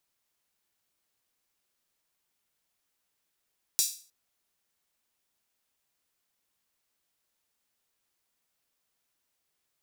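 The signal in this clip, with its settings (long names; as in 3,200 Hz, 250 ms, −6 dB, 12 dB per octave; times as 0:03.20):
open synth hi-hat length 0.31 s, high-pass 5,300 Hz, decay 0.40 s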